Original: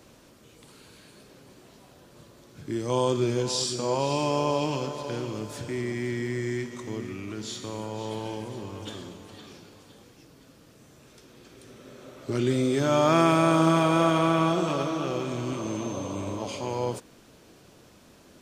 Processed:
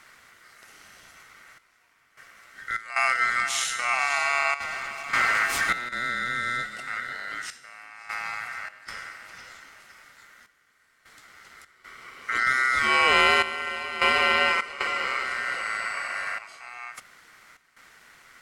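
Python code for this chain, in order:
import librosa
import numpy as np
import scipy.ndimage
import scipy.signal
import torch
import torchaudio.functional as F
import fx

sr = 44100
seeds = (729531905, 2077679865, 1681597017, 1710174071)

y = fx.leveller(x, sr, passes=3, at=(4.6, 5.89))
y = fx.step_gate(y, sr, bpm=76, pattern='xxxxxxxx...xxx.', floor_db=-12.0, edge_ms=4.5)
y = y * np.sin(2.0 * np.pi * 1700.0 * np.arange(len(y)) / sr)
y = y * librosa.db_to_amplitude(4.0)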